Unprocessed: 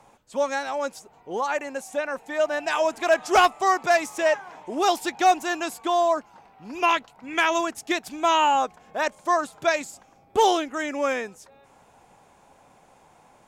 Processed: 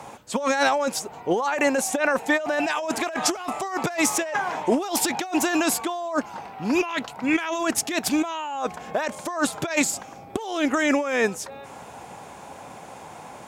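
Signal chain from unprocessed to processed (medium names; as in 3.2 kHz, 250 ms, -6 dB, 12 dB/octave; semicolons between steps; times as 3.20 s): high-pass 74 Hz; compressor with a negative ratio -32 dBFS, ratio -1; trim +7 dB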